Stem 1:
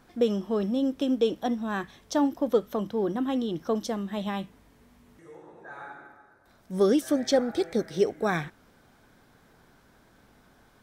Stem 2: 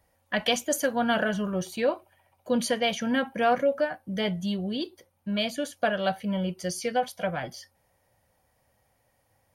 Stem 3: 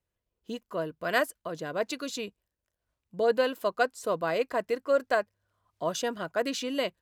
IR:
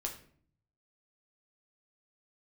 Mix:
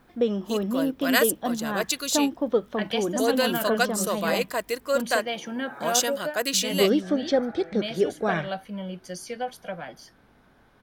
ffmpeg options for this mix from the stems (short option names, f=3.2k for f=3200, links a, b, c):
-filter_complex "[0:a]lowpass=3.9k,volume=0.5dB[a];[1:a]highpass=f=160:w=0.5412,highpass=f=160:w=1.3066,adelay=2450,volume=-5dB[b];[2:a]crystalizer=i=6:c=0,volume=-1dB[c];[a][b][c]amix=inputs=3:normalize=0"